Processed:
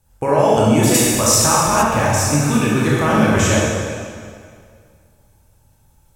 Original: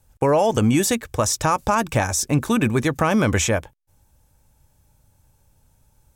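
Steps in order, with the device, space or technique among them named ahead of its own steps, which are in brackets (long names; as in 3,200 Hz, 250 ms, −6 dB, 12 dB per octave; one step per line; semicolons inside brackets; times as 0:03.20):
stairwell (convolution reverb RT60 2.1 s, pre-delay 20 ms, DRR −6.5 dB)
0:00.94–0:01.83: high-shelf EQ 4,000 Hz +9.5 dB
level −2.5 dB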